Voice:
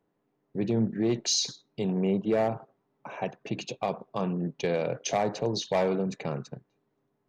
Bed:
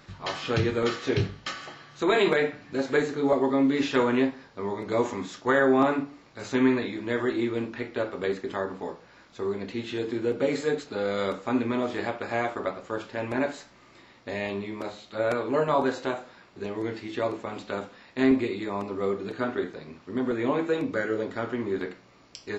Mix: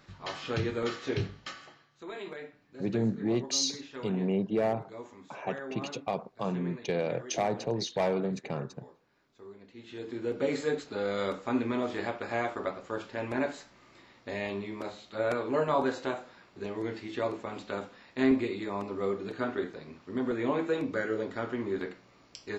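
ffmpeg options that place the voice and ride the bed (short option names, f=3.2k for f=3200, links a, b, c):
-filter_complex "[0:a]adelay=2250,volume=-2.5dB[a];[1:a]volume=9.5dB,afade=t=out:st=1.37:d=0.54:silence=0.223872,afade=t=in:st=9.73:d=0.78:silence=0.16788[b];[a][b]amix=inputs=2:normalize=0"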